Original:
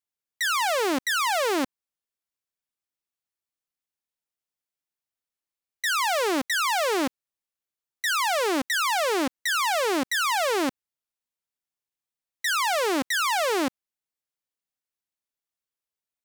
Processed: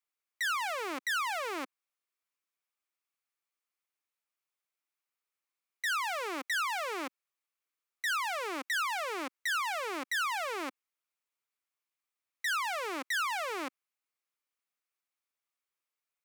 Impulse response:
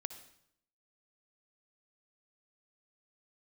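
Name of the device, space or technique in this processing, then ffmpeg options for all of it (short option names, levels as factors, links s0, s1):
laptop speaker: -af "highpass=f=280:w=0.5412,highpass=f=280:w=1.3066,equalizer=f=1200:t=o:w=0.54:g=7.5,equalizer=f=2300:t=o:w=0.53:g=7,alimiter=limit=0.0631:level=0:latency=1:release=52,volume=0.794"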